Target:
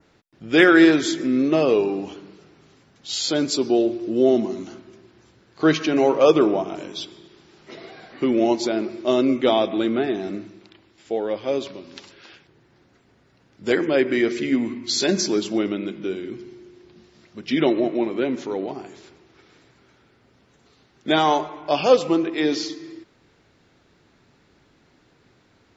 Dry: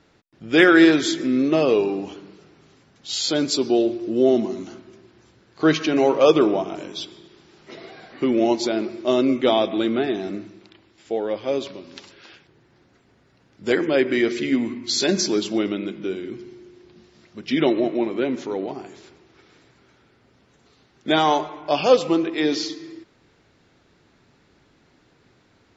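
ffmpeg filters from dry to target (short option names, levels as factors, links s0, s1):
-af "adynamicequalizer=threshold=0.01:dfrequency=3700:dqfactor=1.3:tfrequency=3700:tqfactor=1.3:attack=5:release=100:ratio=0.375:range=2:mode=cutabove:tftype=bell"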